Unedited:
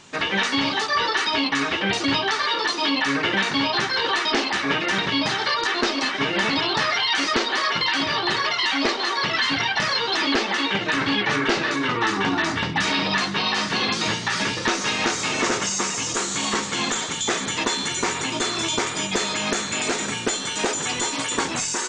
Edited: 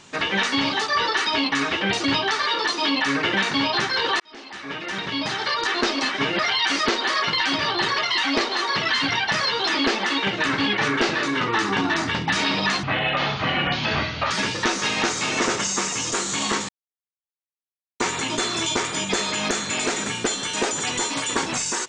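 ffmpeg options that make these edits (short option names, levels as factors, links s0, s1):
-filter_complex "[0:a]asplit=7[s0][s1][s2][s3][s4][s5][s6];[s0]atrim=end=4.2,asetpts=PTS-STARTPTS,afade=t=out:st=4.196:d=0.004:c=hsin[s7];[s1]atrim=start=4.2:end=6.392,asetpts=PTS-STARTPTS,afade=t=in:d=1.56[s8];[s2]atrim=start=6.868:end=13.314[s9];[s3]atrim=start=13.31:end=14.33,asetpts=PTS-STARTPTS,asetrate=30429,aresample=44100,atrim=end_sample=65191,asetpts=PTS-STARTPTS[s10];[s4]atrim=start=14.326:end=16.71,asetpts=PTS-STARTPTS,afade=t=out:st=2.38:d=0.004:c=hsin[s11];[s5]atrim=start=16.71:end=18.02,asetpts=PTS-STARTPTS,volume=0[s12];[s6]atrim=start=18.02,asetpts=PTS-STARTPTS,afade=t=in:d=0.004:c=hsin[s13];[s7][s8]concat=n=2:v=0:a=1[s14];[s14][s9]acrossfade=d=0.004:c1=hsin:c2=hsin[s15];[s15][s10]acrossfade=d=0.004:c1=hsin:c2=hsin[s16];[s11][s12][s13]concat=n=3:v=0:a=1[s17];[s16][s17]acrossfade=d=0.004:c1=hsin:c2=hsin"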